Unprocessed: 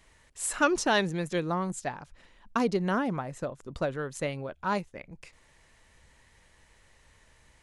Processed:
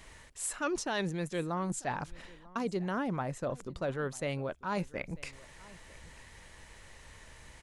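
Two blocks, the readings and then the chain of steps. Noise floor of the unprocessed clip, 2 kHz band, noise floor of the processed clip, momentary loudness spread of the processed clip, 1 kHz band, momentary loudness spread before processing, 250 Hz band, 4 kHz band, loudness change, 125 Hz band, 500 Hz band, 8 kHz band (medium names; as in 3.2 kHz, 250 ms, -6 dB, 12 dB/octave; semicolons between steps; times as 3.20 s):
-62 dBFS, -6.5 dB, -55 dBFS, 19 LU, -6.0 dB, 12 LU, -4.5 dB, -7.0 dB, -5.5 dB, -2.0 dB, -5.0 dB, -3.5 dB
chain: reverse; compression 5:1, threshold -40 dBFS, peak gain reduction 19 dB; reverse; delay 943 ms -22 dB; trim +7.5 dB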